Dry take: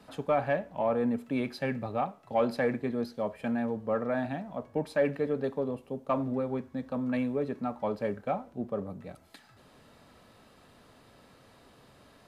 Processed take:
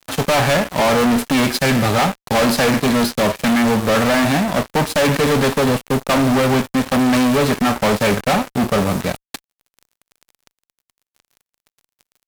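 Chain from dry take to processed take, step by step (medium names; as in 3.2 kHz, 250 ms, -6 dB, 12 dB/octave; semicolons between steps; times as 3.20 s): formants flattened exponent 0.6; fuzz box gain 41 dB, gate -48 dBFS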